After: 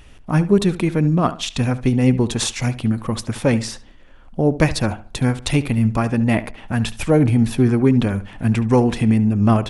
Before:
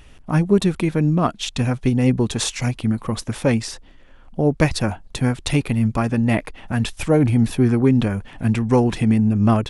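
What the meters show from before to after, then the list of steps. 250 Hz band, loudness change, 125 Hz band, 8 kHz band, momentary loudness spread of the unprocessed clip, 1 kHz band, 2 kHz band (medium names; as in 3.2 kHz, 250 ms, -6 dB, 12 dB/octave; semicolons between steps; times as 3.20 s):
+1.0 dB, +1.0 dB, +1.0 dB, +1.0 dB, 7 LU, +1.0 dB, +1.0 dB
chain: filtered feedback delay 71 ms, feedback 31%, low-pass 3.6 kHz, level -15 dB; trim +1 dB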